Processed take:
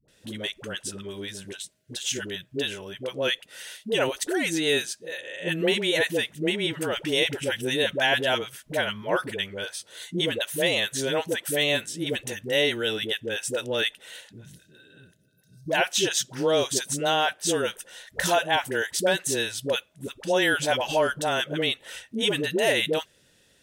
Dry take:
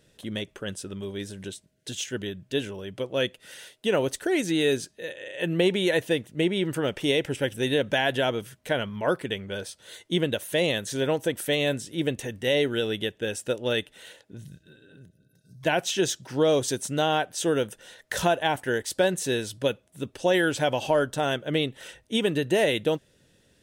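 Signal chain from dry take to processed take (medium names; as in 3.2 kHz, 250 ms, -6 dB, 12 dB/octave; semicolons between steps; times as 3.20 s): tilt shelf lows -4.5 dB, about 650 Hz; phase dispersion highs, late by 83 ms, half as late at 500 Hz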